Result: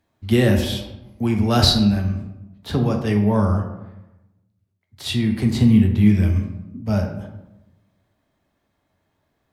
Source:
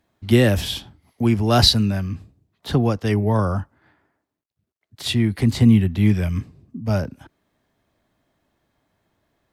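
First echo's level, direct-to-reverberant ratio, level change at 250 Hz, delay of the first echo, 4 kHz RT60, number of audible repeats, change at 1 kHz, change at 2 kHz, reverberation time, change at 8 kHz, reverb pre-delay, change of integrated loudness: no echo, 2.5 dB, +2.0 dB, no echo, 0.55 s, no echo, -1.0 dB, -1.5 dB, 0.95 s, -2.0 dB, 4 ms, +0.5 dB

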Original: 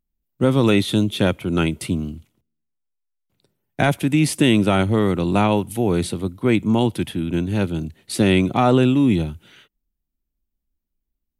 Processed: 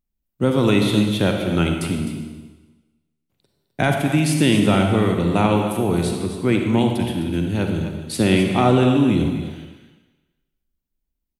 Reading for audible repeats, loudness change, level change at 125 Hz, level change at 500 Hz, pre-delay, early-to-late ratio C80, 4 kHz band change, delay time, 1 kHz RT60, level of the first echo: 1, 0.0 dB, +1.0 dB, +0.5 dB, 39 ms, 4.5 dB, +0.5 dB, 257 ms, 1.2 s, -11.0 dB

